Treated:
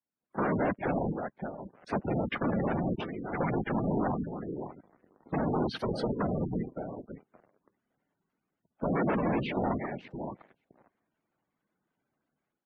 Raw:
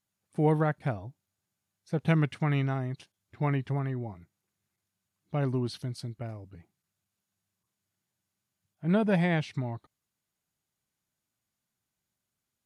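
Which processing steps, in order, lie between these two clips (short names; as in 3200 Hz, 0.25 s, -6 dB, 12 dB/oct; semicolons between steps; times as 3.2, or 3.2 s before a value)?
AGC gain up to 16 dB; limiter -10.5 dBFS, peak gain reduction 9 dB; high shelf 2400 Hz -10.5 dB; compressor 12:1, threshold -26 dBFS, peak gain reduction 12.5 dB; thinning echo 0.566 s, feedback 17%, high-pass 200 Hz, level -13 dB; wavefolder -28 dBFS; whisperiser; sample leveller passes 3; spectral gate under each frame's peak -20 dB strong; three-band isolator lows -15 dB, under 160 Hz, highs -16 dB, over 3200 Hz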